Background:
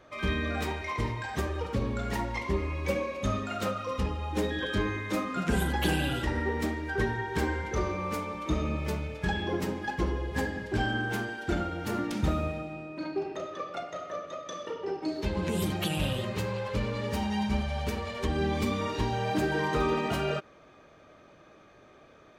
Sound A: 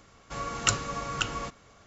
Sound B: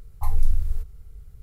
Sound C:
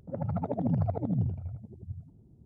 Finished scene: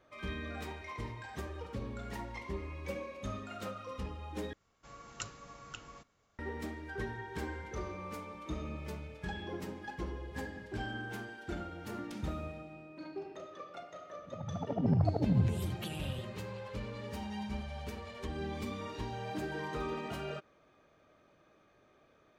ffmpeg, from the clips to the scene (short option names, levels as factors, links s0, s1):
-filter_complex "[0:a]volume=0.299[s0];[3:a]dynaudnorm=f=120:g=9:m=3.76[s1];[s0]asplit=2[s2][s3];[s2]atrim=end=4.534[s4];[1:a]atrim=end=1.86,asetpts=PTS-STARTPTS,volume=0.133[s5];[s3]atrim=start=6.386[s6];[s1]atrim=end=2.45,asetpts=PTS-STARTPTS,volume=0.282,afade=t=in:d=0.004:c=hsin,afade=t=out:st=2.446:d=0.004:c=hsin,adelay=14190[s7];[s4][s5]acrossfade=d=0.004:c1=hsin:c2=hsin[s8];[s8][s6]acrossfade=d=0.004:c1=hsin:c2=hsin[s9];[s9][s7]amix=inputs=2:normalize=0"